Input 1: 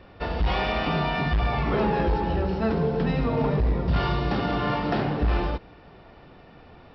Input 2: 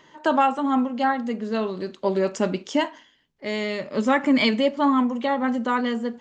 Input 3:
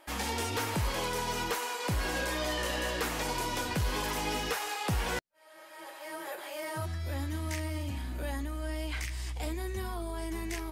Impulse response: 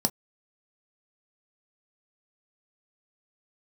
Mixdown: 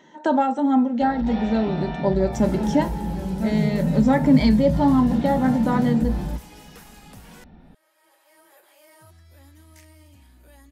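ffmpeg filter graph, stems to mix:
-filter_complex "[0:a]asubboost=boost=6:cutoff=170,adelay=800,volume=-10dB,asplit=2[a][b];[b]volume=-9.5dB[c];[1:a]volume=-4.5dB,asplit=2[d][e];[e]volume=-8.5dB[f];[2:a]highshelf=f=7k:g=8.5,adelay=2250,volume=-15.5dB[g];[a][d]amix=inputs=2:normalize=0,acompressor=threshold=-27dB:ratio=6,volume=0dB[h];[3:a]atrim=start_sample=2205[i];[c][f]amix=inputs=2:normalize=0[j];[j][i]afir=irnorm=-1:irlink=0[k];[g][h][k]amix=inputs=3:normalize=0"

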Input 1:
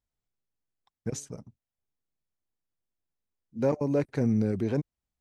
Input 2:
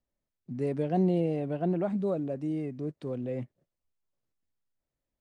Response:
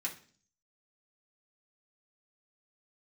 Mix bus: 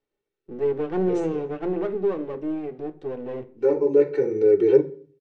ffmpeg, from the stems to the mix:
-filter_complex "[0:a]highpass=160,aecho=1:1:2.2:0.84,volume=-0.5dB,asplit=2[a][b];[b]volume=-3.5dB[c];[1:a]aeval=exprs='max(val(0),0)':c=same,volume=0.5dB,asplit=3[d][e][f];[e]volume=-5dB[g];[f]apad=whole_len=229569[h];[a][h]sidechaincompress=threshold=-52dB:ratio=8:attack=16:release=912[i];[2:a]atrim=start_sample=2205[j];[c][g]amix=inputs=2:normalize=0[k];[k][j]afir=irnorm=-1:irlink=0[l];[i][d][l]amix=inputs=3:normalize=0,lowpass=3.7k,equalizer=f=400:w=2.1:g=14.5"

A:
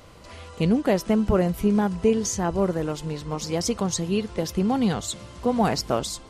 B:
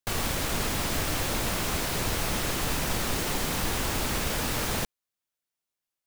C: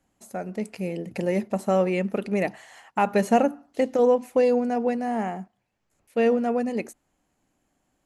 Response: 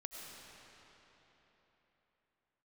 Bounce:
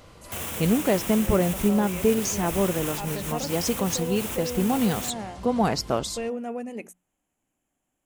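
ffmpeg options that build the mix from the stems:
-filter_complex "[0:a]volume=-1dB[a];[1:a]highpass=100,adelay=250,volume=1.5dB[b];[2:a]bandreject=f=60:t=h:w=6,bandreject=f=120:t=h:w=6,bandreject=f=180:t=h:w=6,volume=-8dB,asplit=2[c][d];[d]apad=whole_len=278273[e];[b][e]sidechaincompress=threshold=-35dB:ratio=3:attack=7.4:release=592[f];[f][c]amix=inputs=2:normalize=0,aexciter=amount=1.1:drive=4.7:freq=2.4k,alimiter=limit=-23.5dB:level=0:latency=1:release=38,volume=0dB[g];[a][g]amix=inputs=2:normalize=0"

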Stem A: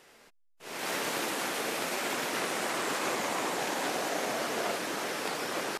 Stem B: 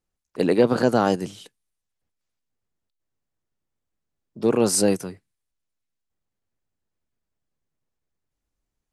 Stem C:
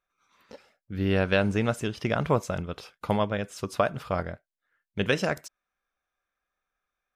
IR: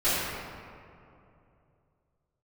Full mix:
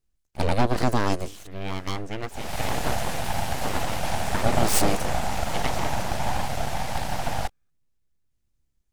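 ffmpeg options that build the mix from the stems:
-filter_complex "[0:a]lowshelf=f=540:t=q:w=3:g=9.5,adelay=1700,volume=1dB[a];[1:a]equalizer=f=770:t=o:w=2.2:g=-6.5,acontrast=57,lowshelf=f=84:g=10,volume=-4dB[b];[2:a]adelay=550,volume=-4.5dB[c];[a][b][c]amix=inputs=3:normalize=0,aeval=exprs='abs(val(0))':c=same"

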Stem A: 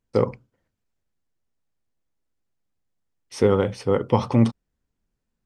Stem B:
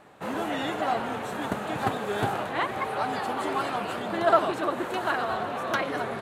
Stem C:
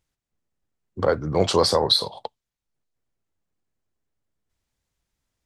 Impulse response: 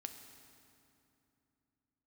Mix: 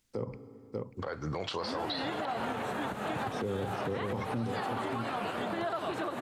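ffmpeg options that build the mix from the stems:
-filter_complex "[0:a]equalizer=f=190:w=0.39:g=6.5,volume=-5dB,asplit=3[a][b][c];[b]volume=-14.5dB[d];[c]volume=-16dB[e];[1:a]adelay=1400,volume=2.5dB[f];[2:a]tiltshelf=f=1.1k:g=-7.5,acompressor=threshold=-22dB:ratio=2.5,volume=-2dB,asplit=2[g][h];[h]volume=-11dB[i];[a][f]amix=inputs=2:normalize=0,acrossover=split=120|3000[j][k][l];[k]acompressor=threshold=-29dB:ratio=2[m];[j][m][l]amix=inputs=3:normalize=0,alimiter=limit=-18.5dB:level=0:latency=1:release=137,volume=0dB[n];[3:a]atrim=start_sample=2205[o];[d][i]amix=inputs=2:normalize=0[p];[p][o]afir=irnorm=-1:irlink=0[q];[e]aecho=0:1:589:1[r];[g][n][q][r]amix=inputs=4:normalize=0,acrossover=split=3600[s][t];[t]acompressor=threshold=-50dB:ratio=4:attack=1:release=60[u];[s][u]amix=inputs=2:normalize=0,alimiter=level_in=1dB:limit=-24dB:level=0:latency=1:release=135,volume=-1dB"

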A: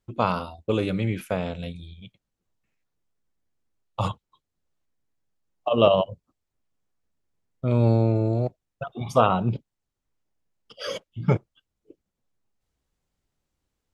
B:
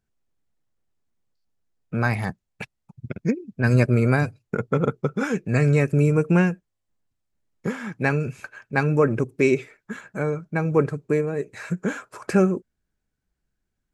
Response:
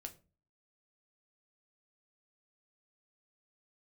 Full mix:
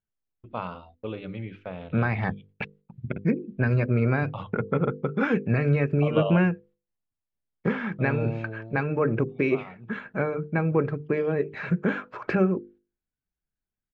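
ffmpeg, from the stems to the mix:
-filter_complex "[0:a]agate=range=-16dB:threshold=-47dB:ratio=16:detection=peak,adelay=350,volume=-9.5dB,afade=t=out:st=8.17:d=0.62:silence=0.237137[a];[1:a]alimiter=limit=-14.5dB:level=0:latency=1:release=262,volume=2.5dB[b];[a][b]amix=inputs=2:normalize=0,lowpass=f=3.4k:w=0.5412,lowpass=f=3.4k:w=1.3066,agate=range=-14dB:threshold=-52dB:ratio=16:detection=peak,bandreject=f=50:t=h:w=6,bandreject=f=100:t=h:w=6,bandreject=f=150:t=h:w=6,bandreject=f=200:t=h:w=6,bandreject=f=250:t=h:w=6,bandreject=f=300:t=h:w=6,bandreject=f=350:t=h:w=6,bandreject=f=400:t=h:w=6,bandreject=f=450:t=h:w=6,bandreject=f=500:t=h:w=6"

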